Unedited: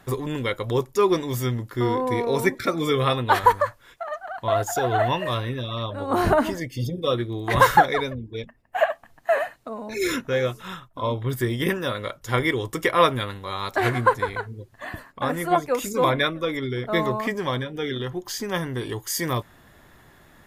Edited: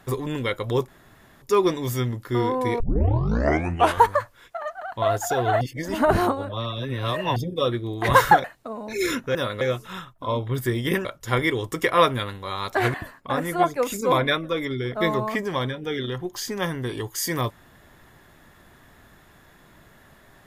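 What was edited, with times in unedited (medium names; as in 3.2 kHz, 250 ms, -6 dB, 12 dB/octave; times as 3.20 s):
0.88 s: insert room tone 0.54 s
2.26 s: tape start 1.27 s
5.07–6.82 s: reverse
7.90–9.45 s: delete
11.80–12.06 s: move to 10.36 s
13.95–14.86 s: delete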